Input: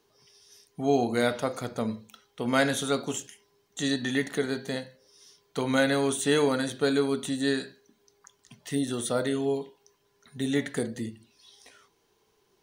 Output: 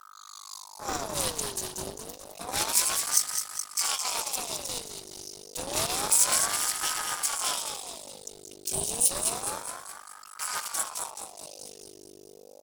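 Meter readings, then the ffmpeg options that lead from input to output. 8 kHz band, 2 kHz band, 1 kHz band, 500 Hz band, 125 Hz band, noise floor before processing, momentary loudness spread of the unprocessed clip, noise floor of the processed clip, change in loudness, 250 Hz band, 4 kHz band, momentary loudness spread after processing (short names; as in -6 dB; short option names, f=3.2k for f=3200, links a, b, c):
+13.0 dB, -5.0 dB, +0.5 dB, -12.0 dB, -11.0 dB, -70 dBFS, 12 LU, -51 dBFS, +1.0 dB, -17.5 dB, +3.5 dB, 19 LU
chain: -af "afftfilt=real='hypot(re,im)*cos(2*PI*random(0))':imag='hypot(re,im)*sin(2*PI*random(1))':win_size=512:overlap=0.75,lowshelf=f=200:g=5,aecho=1:1:211|422|633|844|1055|1266|1477:0.447|0.241|0.13|0.0703|0.038|0.0205|0.0111,aeval=exprs='val(0)+0.00631*(sin(2*PI*50*n/s)+sin(2*PI*2*50*n/s)/2+sin(2*PI*3*50*n/s)/3+sin(2*PI*4*50*n/s)/4+sin(2*PI*5*50*n/s)/5)':c=same,aeval=exprs='max(val(0),0)':c=same,equalizer=f=3.8k:w=5.6:g=-11,aexciter=amount=8:drive=8.7:freq=3.2k,aeval=exprs='val(0)*sin(2*PI*820*n/s+820*0.55/0.29*sin(2*PI*0.29*n/s))':c=same"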